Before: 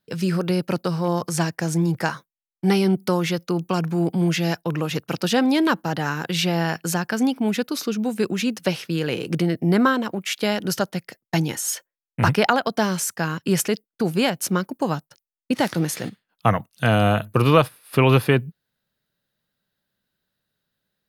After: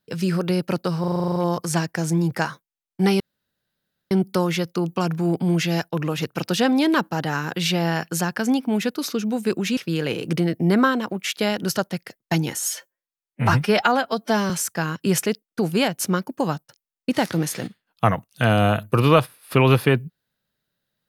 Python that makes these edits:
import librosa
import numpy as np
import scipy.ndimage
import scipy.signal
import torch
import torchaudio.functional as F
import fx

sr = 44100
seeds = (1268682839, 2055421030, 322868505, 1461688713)

y = fx.edit(x, sr, fx.stutter(start_s=1.0, slice_s=0.04, count=10),
    fx.insert_room_tone(at_s=2.84, length_s=0.91),
    fx.cut(start_s=8.5, length_s=0.29),
    fx.stretch_span(start_s=11.72, length_s=1.2, factor=1.5), tone=tone)